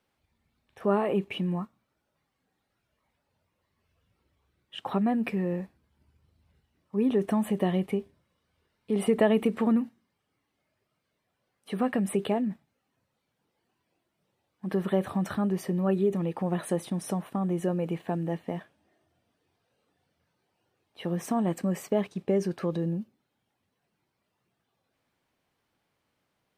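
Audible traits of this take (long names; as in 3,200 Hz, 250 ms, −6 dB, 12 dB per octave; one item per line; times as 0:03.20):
background noise floor −80 dBFS
spectral slope −6.5 dB per octave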